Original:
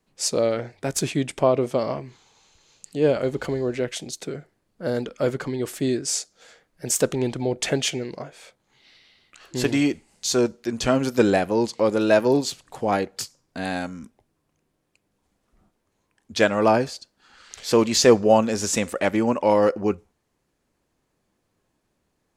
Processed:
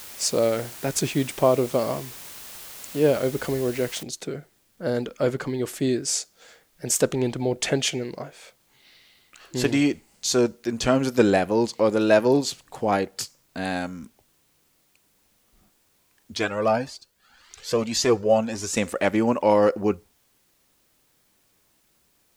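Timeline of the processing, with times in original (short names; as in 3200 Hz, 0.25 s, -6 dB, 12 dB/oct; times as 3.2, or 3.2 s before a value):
4.03 noise floor step -41 dB -66 dB
16.37–18.77 cascading flanger rising 1.8 Hz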